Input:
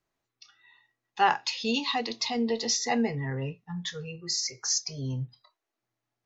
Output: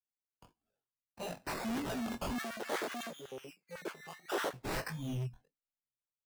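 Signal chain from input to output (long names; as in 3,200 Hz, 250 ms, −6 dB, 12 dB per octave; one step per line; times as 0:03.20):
Chebyshev band-stop filter 230–2,500 Hz, order 4
noise gate −56 dBFS, range −12 dB
parametric band 300 Hz +11.5 dB 1 octave
sample-and-hold swept by an LFO 18×, swing 60% 0.56 Hz
chorus effect 1.6 Hz, delay 17.5 ms, depth 7 ms
hard clipping −37 dBFS, distortion −3 dB
0:02.38–0:04.53: auto-filter high-pass square 8 Hz 420–1,500 Hz
multiband upward and downward expander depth 40%
level +2 dB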